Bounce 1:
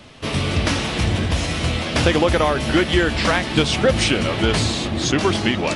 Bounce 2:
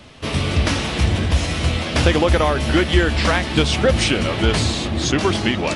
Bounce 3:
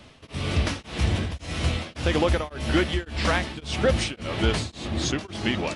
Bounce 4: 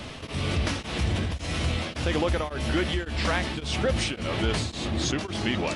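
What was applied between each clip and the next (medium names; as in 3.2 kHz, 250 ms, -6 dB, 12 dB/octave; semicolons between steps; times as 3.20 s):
peaking EQ 69 Hz +8.5 dB 0.34 oct
tremolo of two beating tones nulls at 1.8 Hz; trim -5 dB
level flattener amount 50%; trim -5 dB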